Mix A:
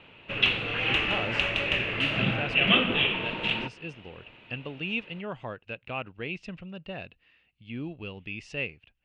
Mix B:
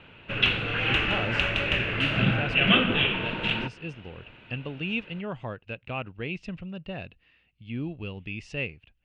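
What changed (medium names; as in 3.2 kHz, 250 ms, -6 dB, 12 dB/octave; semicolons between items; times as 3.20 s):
background: add peaking EQ 1.5 kHz +7.5 dB 0.29 oct; master: add bass shelf 200 Hz +7.5 dB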